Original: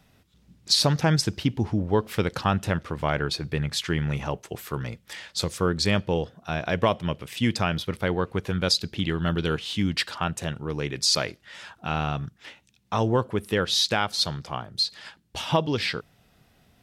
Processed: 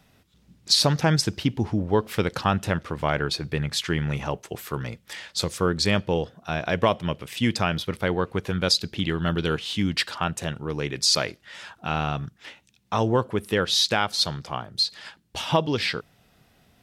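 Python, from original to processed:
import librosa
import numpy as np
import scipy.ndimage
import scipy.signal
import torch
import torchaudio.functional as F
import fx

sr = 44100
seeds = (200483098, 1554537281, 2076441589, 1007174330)

y = fx.low_shelf(x, sr, hz=140.0, db=-3.0)
y = y * librosa.db_to_amplitude(1.5)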